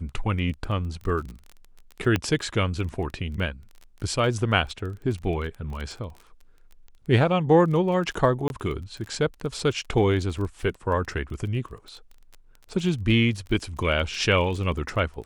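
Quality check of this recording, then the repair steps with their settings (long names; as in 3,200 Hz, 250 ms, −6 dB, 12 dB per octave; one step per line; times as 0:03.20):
surface crackle 22 per second −33 dBFS
0:02.16: click −10 dBFS
0:08.48–0:08.50: drop-out 21 ms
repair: click removal
repair the gap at 0:08.48, 21 ms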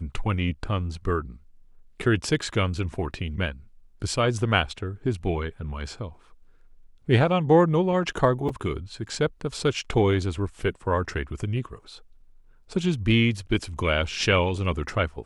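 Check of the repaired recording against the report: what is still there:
none of them is left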